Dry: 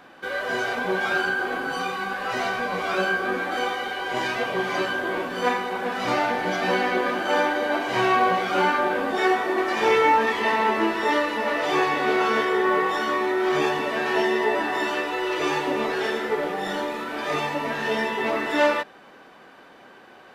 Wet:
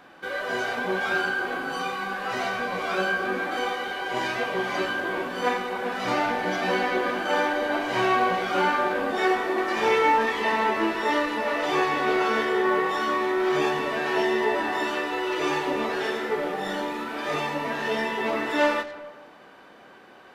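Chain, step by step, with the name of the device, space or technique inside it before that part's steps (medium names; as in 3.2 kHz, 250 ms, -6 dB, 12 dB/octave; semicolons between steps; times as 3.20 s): saturated reverb return (on a send at -8 dB: reverberation RT60 1.1 s, pre-delay 42 ms + saturation -24 dBFS, distortion -9 dB); on the sum: trim -2 dB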